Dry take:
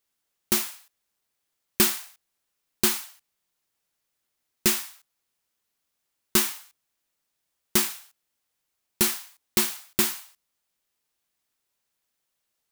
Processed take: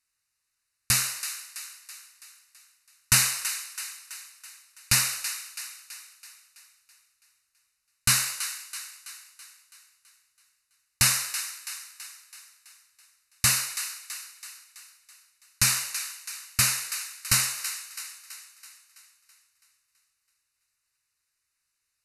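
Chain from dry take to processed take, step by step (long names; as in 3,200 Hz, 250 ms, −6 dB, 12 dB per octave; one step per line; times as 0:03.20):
flat-topped bell 640 Hz −13.5 dB 2.8 octaves
on a send: delay with a high-pass on its return 190 ms, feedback 54%, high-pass 1,800 Hz, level −10.5 dB
on the sum: wrong playback speed 78 rpm record played at 45 rpm
Butterworth band-reject 3,300 Hz, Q 4.5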